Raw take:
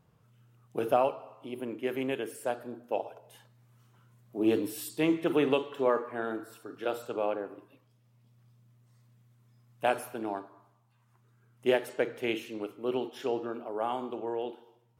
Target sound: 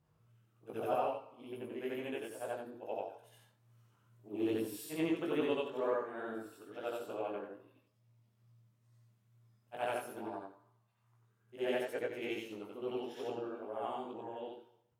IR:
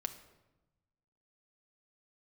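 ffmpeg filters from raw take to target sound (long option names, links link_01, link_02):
-af "afftfilt=real='re':imag='-im':win_size=8192:overlap=0.75,flanger=delay=18:depth=2.8:speed=2.3"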